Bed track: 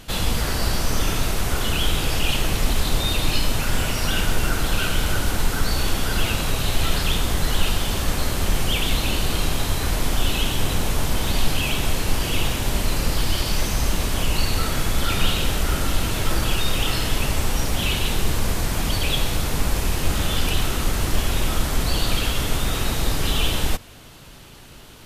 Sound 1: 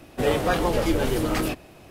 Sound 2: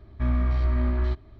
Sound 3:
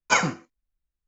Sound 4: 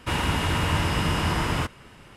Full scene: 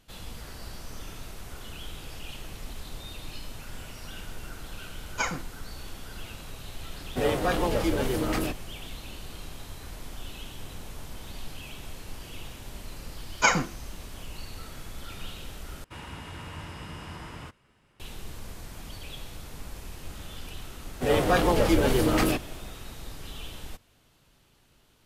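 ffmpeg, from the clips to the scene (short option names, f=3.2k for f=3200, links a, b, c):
-filter_complex "[3:a]asplit=2[a][b];[1:a]asplit=2[c][d];[0:a]volume=-19dB[e];[b]acompressor=mode=upward:threshold=-47dB:ratio=2.5:attack=3.2:release=140:knee=2.83:detection=peak[f];[d]dynaudnorm=f=100:g=5:m=8.5dB[g];[e]asplit=2[h][i];[h]atrim=end=15.844[j];[4:a]atrim=end=2.16,asetpts=PTS-STARTPTS,volume=-16.5dB[k];[i]atrim=start=17.996[l];[a]atrim=end=1.07,asetpts=PTS-STARTPTS,volume=-9dB,afade=t=in:d=0.004:c=hsin,afade=t=out:st=1.066:d=0.004:c=hsin,adelay=5080[m];[c]atrim=end=1.9,asetpts=PTS-STARTPTS,volume=-3.5dB,afade=t=in:d=0.004:c=hsin,afade=t=out:st=1.896:d=0.004:c=hsin,adelay=307818S[n];[f]atrim=end=1.07,asetpts=PTS-STARTPTS,volume=-1dB,afade=t=in:d=0.004:c=hsin,afade=t=out:st=1.066:d=0.004:c=hsin,adelay=587412S[o];[g]atrim=end=1.9,asetpts=PTS-STARTPTS,volume=-6.5dB,afade=t=in:d=0.004:c=hsin,afade=t=out:st=1.896:d=0.004:c=hsin,adelay=20830[p];[j][k]acrossfade=d=0.004:c1=hsin:c2=hsin[q];[q][l]acrossfade=d=0.004:c1=hsin:c2=hsin[r];[r][m][n][o][p]amix=inputs=5:normalize=0"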